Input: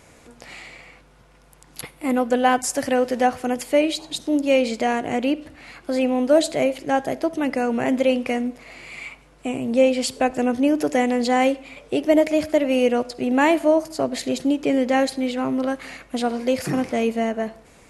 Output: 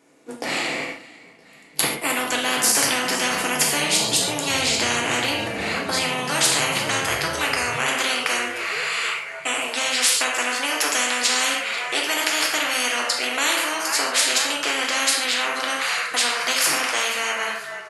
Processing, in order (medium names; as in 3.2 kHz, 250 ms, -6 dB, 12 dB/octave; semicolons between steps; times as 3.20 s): gate -44 dBFS, range -25 dB; high-pass sweep 270 Hz -> 1.4 kHz, 5.20–7.05 s; on a send: frequency-shifting echo 484 ms, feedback 64%, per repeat -32 Hz, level -22.5 dB; on the sum: gated-style reverb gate 170 ms falling, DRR -0.5 dB; spectrum-flattening compressor 10:1; trim -3.5 dB